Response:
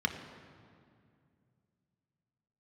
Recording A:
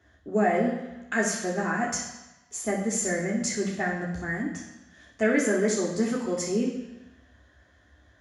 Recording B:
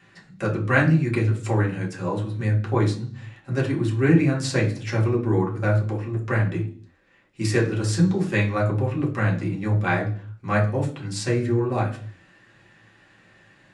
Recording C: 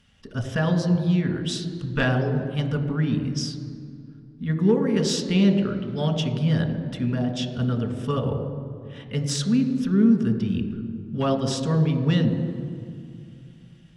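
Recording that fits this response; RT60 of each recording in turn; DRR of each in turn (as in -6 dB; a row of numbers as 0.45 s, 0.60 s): C; 1.0 s, 0.50 s, 2.3 s; -3.0 dB, -3.0 dB, 4.5 dB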